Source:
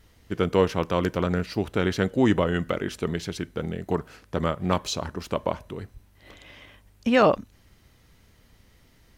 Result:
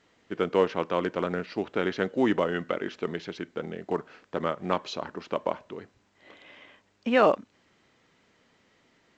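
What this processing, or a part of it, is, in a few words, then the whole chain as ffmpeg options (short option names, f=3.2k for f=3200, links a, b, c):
telephone: -af "highpass=250,lowpass=3.3k,volume=-1.5dB" -ar 16000 -c:a pcm_alaw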